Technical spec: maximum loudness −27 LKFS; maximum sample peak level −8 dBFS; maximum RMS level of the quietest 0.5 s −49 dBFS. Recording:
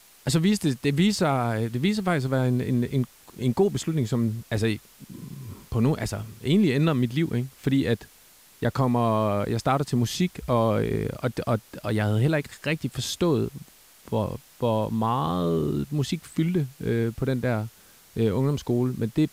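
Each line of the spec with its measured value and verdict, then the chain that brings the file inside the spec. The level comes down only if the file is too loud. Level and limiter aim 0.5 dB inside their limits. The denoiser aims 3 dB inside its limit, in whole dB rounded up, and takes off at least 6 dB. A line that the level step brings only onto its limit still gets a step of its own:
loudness −25.5 LKFS: out of spec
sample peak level −9.0 dBFS: in spec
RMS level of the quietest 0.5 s −54 dBFS: in spec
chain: level −2 dB

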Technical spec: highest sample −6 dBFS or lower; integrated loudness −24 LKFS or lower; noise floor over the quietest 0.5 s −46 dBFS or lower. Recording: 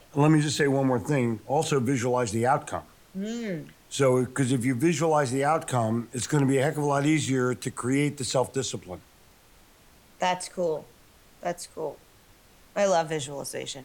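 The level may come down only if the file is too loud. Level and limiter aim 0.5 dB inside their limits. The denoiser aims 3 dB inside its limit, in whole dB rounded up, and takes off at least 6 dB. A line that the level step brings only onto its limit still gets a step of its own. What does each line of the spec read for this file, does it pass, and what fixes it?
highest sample −10.0 dBFS: in spec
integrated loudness −26.5 LKFS: in spec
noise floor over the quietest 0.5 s −56 dBFS: in spec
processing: no processing needed

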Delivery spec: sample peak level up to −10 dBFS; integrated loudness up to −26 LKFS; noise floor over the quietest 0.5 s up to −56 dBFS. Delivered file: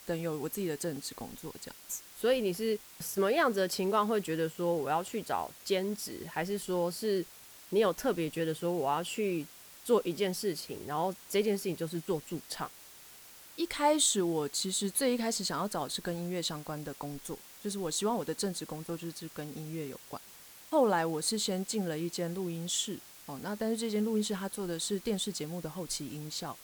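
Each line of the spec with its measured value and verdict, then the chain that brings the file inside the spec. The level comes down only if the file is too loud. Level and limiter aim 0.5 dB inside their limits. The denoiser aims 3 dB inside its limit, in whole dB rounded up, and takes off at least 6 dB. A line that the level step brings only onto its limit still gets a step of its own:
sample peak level −14.5 dBFS: in spec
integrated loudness −33.0 LKFS: in spec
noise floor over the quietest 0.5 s −53 dBFS: out of spec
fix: broadband denoise 6 dB, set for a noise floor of −53 dBFS

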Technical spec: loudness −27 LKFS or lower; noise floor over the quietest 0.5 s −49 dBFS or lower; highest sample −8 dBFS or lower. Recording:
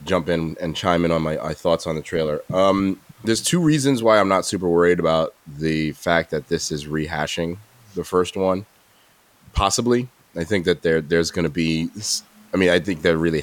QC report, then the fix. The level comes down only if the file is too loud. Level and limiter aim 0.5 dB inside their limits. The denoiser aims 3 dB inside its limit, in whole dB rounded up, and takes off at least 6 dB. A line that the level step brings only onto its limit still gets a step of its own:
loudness −21.0 LKFS: out of spec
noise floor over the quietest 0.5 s −56 dBFS: in spec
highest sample −2.0 dBFS: out of spec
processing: level −6.5 dB

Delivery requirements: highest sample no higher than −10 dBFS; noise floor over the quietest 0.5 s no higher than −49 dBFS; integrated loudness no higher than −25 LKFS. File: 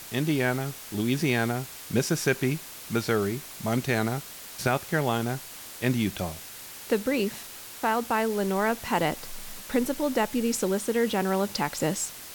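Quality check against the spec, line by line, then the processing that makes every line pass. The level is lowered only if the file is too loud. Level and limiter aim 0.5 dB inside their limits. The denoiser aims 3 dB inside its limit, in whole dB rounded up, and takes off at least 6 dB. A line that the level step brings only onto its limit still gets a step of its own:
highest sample −12.0 dBFS: in spec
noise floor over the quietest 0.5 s −43 dBFS: out of spec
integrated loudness −27.5 LKFS: in spec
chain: broadband denoise 9 dB, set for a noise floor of −43 dBFS

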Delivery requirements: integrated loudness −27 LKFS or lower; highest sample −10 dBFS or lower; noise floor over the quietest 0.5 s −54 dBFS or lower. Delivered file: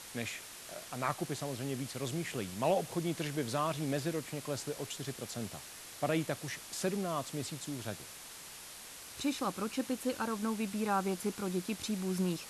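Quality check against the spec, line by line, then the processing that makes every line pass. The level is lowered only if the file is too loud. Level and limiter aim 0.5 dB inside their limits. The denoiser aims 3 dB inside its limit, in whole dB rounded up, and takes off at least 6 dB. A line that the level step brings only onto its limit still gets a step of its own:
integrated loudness −37.0 LKFS: in spec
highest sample −17.5 dBFS: in spec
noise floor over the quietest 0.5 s −49 dBFS: out of spec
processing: broadband denoise 8 dB, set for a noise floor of −49 dBFS

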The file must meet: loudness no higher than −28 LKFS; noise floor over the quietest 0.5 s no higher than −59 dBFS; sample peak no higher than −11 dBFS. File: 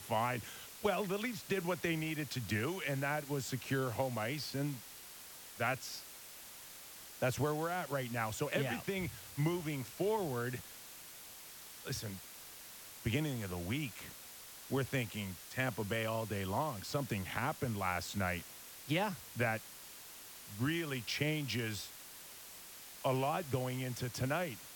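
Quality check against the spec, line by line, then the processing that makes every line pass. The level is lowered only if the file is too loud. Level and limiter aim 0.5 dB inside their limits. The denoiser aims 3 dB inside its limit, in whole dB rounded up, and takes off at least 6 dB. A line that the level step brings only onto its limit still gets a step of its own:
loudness −37.5 LKFS: in spec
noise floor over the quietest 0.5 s −52 dBFS: out of spec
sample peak −21.0 dBFS: in spec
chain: broadband denoise 10 dB, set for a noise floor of −52 dBFS

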